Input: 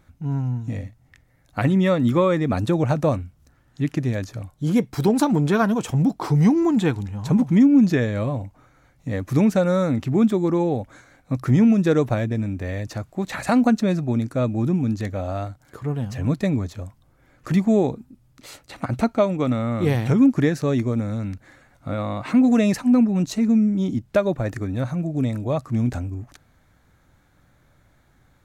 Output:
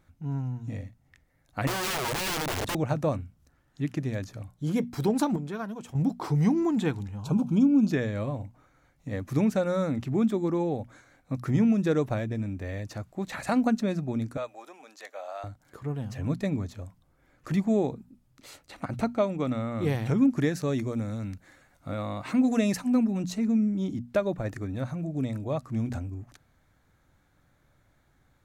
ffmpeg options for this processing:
ffmpeg -i in.wav -filter_complex "[0:a]asettb=1/sr,asplit=3[link_01][link_02][link_03];[link_01]atrim=end=1.674[link_04];[link_02]atrim=start=1.67:end=2.75,asetpts=PTS-STARTPTS,afade=type=in:duration=0.004:curve=qsin,afade=type=out:start_time=1.076:duration=0.004:curve=qsin,aeval=exprs='(mod(8.41*val(0)+1,2)-1)/8.41':channel_layout=same[link_05];[link_03]atrim=start=2.746[link_06];[link_04][link_05]acrossfade=duration=0.004:curve1=hsin:curve2=qsin[link_07];[link_07][link_06]acrossfade=duration=0.004:curve1=qsin:curve2=hsin,asettb=1/sr,asplit=3[link_08][link_09][link_10];[link_08]atrim=end=7.204[link_11];[link_09]atrim=start=7.2:end=7.91,asetpts=PTS-STARTPTS,afade=type=in:duration=0.004:curve=qsin,afade=type=out:start_time=0.706:duration=0.004:curve=qsin,asuperstop=centerf=1900:order=8:qfactor=2.5[link_12];[link_10]atrim=start=7.906[link_13];[link_11][link_12]acrossfade=duration=0.004:curve1=hsin:curve2=qsin[link_14];[link_14][link_13]acrossfade=duration=0.004:curve1=qsin:curve2=hsin,asettb=1/sr,asplit=3[link_15][link_16][link_17];[link_15]atrim=end=14.374[link_18];[link_16]atrim=start=14.37:end=15.44,asetpts=PTS-STARTPTS,afade=type=in:duration=0.004:curve=qsin,afade=type=out:start_time=1.066:duration=0.004:curve=qsin,highpass=frequency=590:width=0.5412,highpass=frequency=590:width=1.3066[link_19];[link_17]atrim=start=15.436[link_20];[link_18][link_19]acrossfade=duration=0.004:curve1=hsin:curve2=qsin[link_21];[link_21][link_20]acrossfade=duration=0.004:curve1=qsin:curve2=hsin,asettb=1/sr,asplit=3[link_22][link_23][link_24];[link_22]atrim=end=20.374[link_25];[link_23]atrim=start=20.37:end=23.18,asetpts=PTS-STARTPTS,afade=type=in:duration=0.004:curve=qsin,afade=type=out:start_time=2.806:duration=0.004:curve=qsin,highshelf=frequency=4500:gain=6[link_26];[link_24]atrim=start=23.176[link_27];[link_25][link_26]acrossfade=duration=0.004:curve1=hsin:curve2=qsin[link_28];[link_28][link_27]acrossfade=duration=0.004:curve1=qsin:curve2=hsin,asplit=3[link_29][link_30][link_31];[link_29]atrim=end=5.362[link_32];[link_30]atrim=start=5.358:end=5.952,asetpts=PTS-STARTPTS,volume=-9dB[link_33];[link_31]atrim=start=5.948[link_34];[link_32][link_33]acrossfade=duration=0.004:curve1=hsin:curve2=hsin[link_35];[link_35][link_34]acrossfade=duration=0.004:curve1=hsin:curve2=hsin,bandreject=frequency=60:width_type=h:width=6,bandreject=frequency=120:width_type=h:width=6,bandreject=frequency=180:width_type=h:width=6,bandreject=frequency=240:width_type=h:width=6,volume=-6.5dB" out.wav

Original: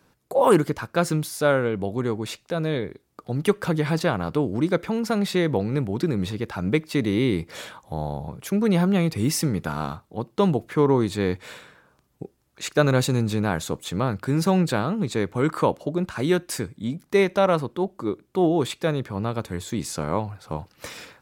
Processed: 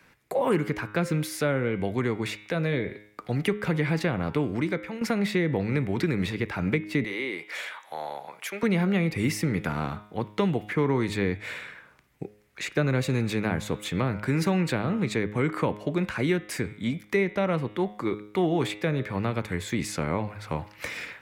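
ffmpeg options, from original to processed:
ffmpeg -i in.wav -filter_complex "[0:a]asettb=1/sr,asplit=3[link_01][link_02][link_03];[link_01]atrim=end=7.044[link_04];[link_02]atrim=start=7.04:end=8.63,asetpts=PTS-STARTPTS,afade=type=in:duration=0.004:curve=qsin,afade=type=out:start_time=1.586:duration=0.004:curve=qsin,highpass=650[link_05];[link_03]atrim=start=8.626[link_06];[link_04][link_05]acrossfade=duration=0.004:curve1=hsin:curve2=qsin[link_07];[link_07][link_06]acrossfade=duration=0.004:curve1=qsin:curve2=hsin,asplit=2[link_08][link_09];[link_08]atrim=end=5.01,asetpts=PTS-STARTPTS,afade=type=out:start_time=4.38:duration=0.63:silence=0.188365[link_10];[link_09]atrim=start=5.01,asetpts=PTS-STARTPTS,afade=type=in:duration=0.004:curve=hsin:silence=0.188365[link_11];[link_10][link_11]concat=n=2:v=0:a=1,equalizer=frequency=2100:width_type=o:width=0.9:gain=14.5,bandreject=frequency=104.4:width_type=h:width=4,bandreject=frequency=208.8:width_type=h:width=4,bandreject=frequency=313.2:width_type=h:width=4,bandreject=frequency=417.6:width_type=h:width=4,bandreject=frequency=522:width_type=h:width=4,bandreject=frequency=626.4:width_type=h:width=4,bandreject=frequency=730.8:width_type=h:width=4,bandreject=frequency=835.2:width_type=h:width=4,bandreject=frequency=939.6:width_type=h:width=4,bandreject=frequency=1044:width_type=h:width=4,bandreject=frequency=1148.4:width_type=h:width=4,bandreject=frequency=1252.8:width_type=h:width=4,bandreject=frequency=1357.2:width_type=h:width=4,bandreject=frequency=1461.6:width_type=h:width=4,bandreject=frequency=1566:width_type=h:width=4,bandreject=frequency=1670.4:width_type=h:width=4,bandreject=frequency=1774.8:width_type=h:width=4,bandreject=frequency=1879.2:width_type=h:width=4,bandreject=frequency=1983.6:width_type=h:width=4,bandreject=frequency=2088:width_type=h:width=4,bandreject=frequency=2192.4:width_type=h:width=4,bandreject=frequency=2296.8:width_type=h:width=4,bandreject=frequency=2401.2:width_type=h:width=4,bandreject=frequency=2505.6:width_type=h:width=4,bandreject=frequency=2610:width_type=h:width=4,bandreject=frequency=2714.4:width_type=h:width=4,bandreject=frequency=2818.8:width_type=h:width=4,bandreject=frequency=2923.2:width_type=h:width=4,bandreject=frequency=3027.6:width_type=h:width=4,bandreject=frequency=3132:width_type=h:width=4,bandreject=frequency=3236.4:width_type=h:width=4,bandreject=frequency=3340.8:width_type=h:width=4,bandreject=frequency=3445.2:width_type=h:width=4,bandreject=frequency=3549.6:width_type=h:width=4,bandreject=frequency=3654:width_type=h:width=4,bandreject=frequency=3758.4:width_type=h:width=4,bandreject=frequency=3862.8:width_type=h:width=4,acrossover=split=310|680[link_12][link_13][link_14];[link_12]acompressor=threshold=-24dB:ratio=4[link_15];[link_13]acompressor=threshold=-30dB:ratio=4[link_16];[link_14]acompressor=threshold=-33dB:ratio=4[link_17];[link_15][link_16][link_17]amix=inputs=3:normalize=0" out.wav

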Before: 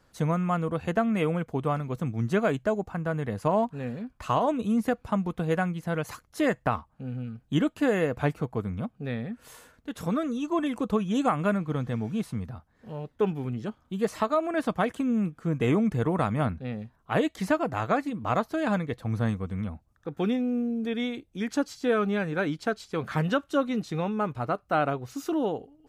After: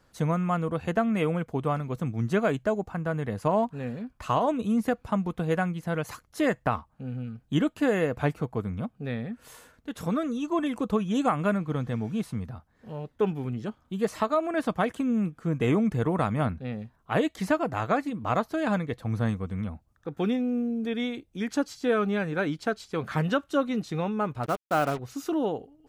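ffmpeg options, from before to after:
ffmpeg -i in.wav -filter_complex "[0:a]asettb=1/sr,asplit=3[link_01][link_02][link_03];[link_01]atrim=end=24.434[link_04];[link_02]atrim=start=24.43:end=24.99,asetpts=PTS-STARTPTS,afade=type=in:duration=0.004:curve=qsin,afade=type=out:start_time=0.556:duration=0.004:curve=qsin,acrusher=bits=5:mix=0:aa=0.5[link_05];[link_03]atrim=start=24.986[link_06];[link_04][link_05]acrossfade=duration=0.004:curve1=hsin:curve2=qsin[link_07];[link_07][link_06]acrossfade=duration=0.004:curve1=qsin:curve2=hsin" out.wav

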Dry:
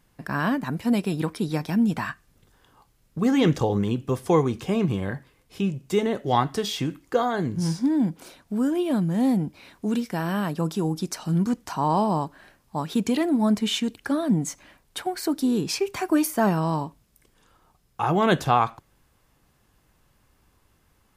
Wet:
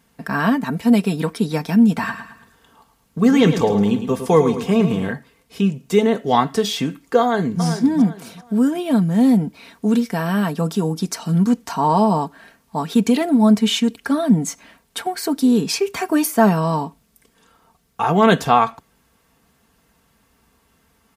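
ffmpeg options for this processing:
ffmpeg -i in.wav -filter_complex "[0:a]asettb=1/sr,asplit=3[link_01][link_02][link_03];[link_01]atrim=end=1.924[link_04];[link_02]atrim=start=1.92:end=5.12,asetpts=PTS-STARTPTS,afade=type=in:duration=0.004:curve=qsin,afade=type=out:start_time=3.196:duration=0.004:curve=qsin,aecho=1:1:108|216|324|432:0.335|0.137|0.0563|0.0231,atrim=end_sample=141120[link_05];[link_03]atrim=start=5.116[link_06];[link_04][link_05]acrossfade=duration=0.004:curve1=hsin:curve2=qsin[link_07];[link_07][link_06]acrossfade=duration=0.004:curve1=qsin:curve2=hsin,asplit=2[link_08][link_09];[link_09]afade=type=in:start_time=7.2:duration=0.01,afade=type=out:start_time=7.62:duration=0.01,aecho=0:1:390|780|1170:0.354813|0.106444|0.0319332[link_10];[link_08][link_10]amix=inputs=2:normalize=0,highpass=70,aecho=1:1:4.4:0.57,volume=4.5dB" out.wav

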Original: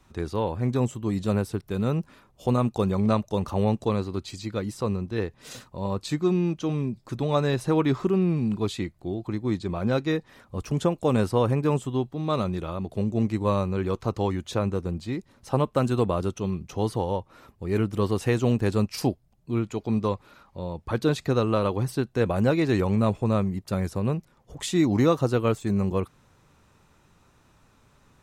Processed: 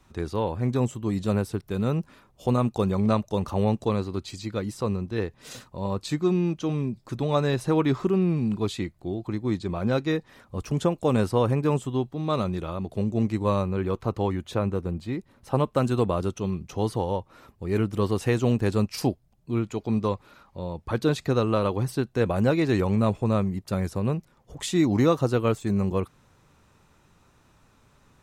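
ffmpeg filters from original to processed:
ffmpeg -i in.wav -filter_complex "[0:a]asettb=1/sr,asplit=3[link_01][link_02][link_03];[link_01]atrim=end=13.624[link_04];[link_02]atrim=start=13.62:end=15.55,asetpts=PTS-STARTPTS,afade=type=in:duration=0.004:curve=qsin,afade=type=out:start_time=1.926:duration=0.004:curve=qsin,equalizer=frequency=6000:width_type=o:width=1.3:gain=-6.5[link_05];[link_03]atrim=start=15.546[link_06];[link_04][link_05]acrossfade=duration=0.004:curve1=hsin:curve2=qsin[link_07];[link_07][link_06]acrossfade=duration=0.004:curve1=qsin:curve2=hsin" out.wav

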